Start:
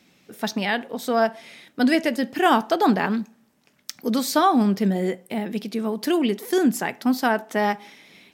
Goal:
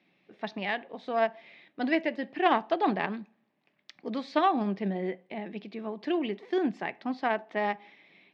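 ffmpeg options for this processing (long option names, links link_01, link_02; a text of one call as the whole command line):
ffmpeg -i in.wav -af "aeval=exprs='0.531*(cos(1*acos(clip(val(0)/0.531,-1,1)))-cos(1*PI/2))+0.0841*(cos(3*acos(clip(val(0)/0.531,-1,1)))-cos(3*PI/2))':channel_layout=same,highpass=190,equalizer=frequency=240:width_type=q:width=4:gain=-8,equalizer=frequency=470:width_type=q:width=4:gain=-6,equalizer=frequency=930:width_type=q:width=4:gain=-3,equalizer=frequency=1400:width_type=q:width=4:gain=-9,equalizer=frequency=3100:width_type=q:width=4:gain=-4,lowpass=frequency=3300:width=0.5412,lowpass=frequency=3300:width=1.3066" out.wav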